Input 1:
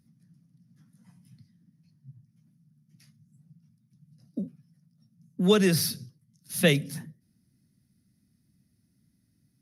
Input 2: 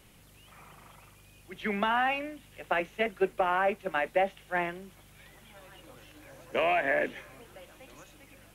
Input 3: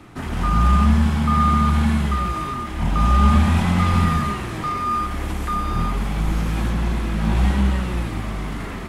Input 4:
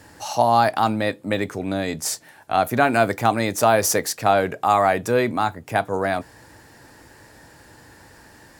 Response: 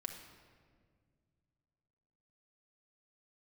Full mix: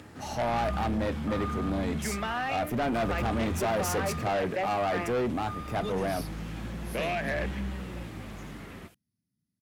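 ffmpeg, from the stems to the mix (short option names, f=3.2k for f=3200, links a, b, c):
-filter_complex "[0:a]adelay=350,volume=-14.5dB[a];[1:a]adelay=400,volume=-1dB[b];[2:a]lowpass=7.6k,acompressor=mode=upward:threshold=-32dB:ratio=2.5,volume=-12.5dB[c];[3:a]tiltshelf=f=1.2k:g=5,volume=-5.5dB[d];[a][b][c][d]amix=inputs=4:normalize=0,highpass=69,equalizer=f=1k:w=1.7:g=-4,asoftclip=type=tanh:threshold=-24.5dB"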